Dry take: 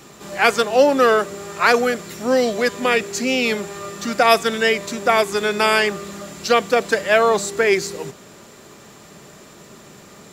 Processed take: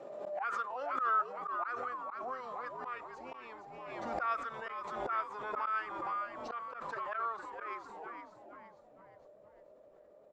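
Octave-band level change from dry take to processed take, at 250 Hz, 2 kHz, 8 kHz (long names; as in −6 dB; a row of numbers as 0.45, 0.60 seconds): −27.5 dB, −22.5 dB, below −35 dB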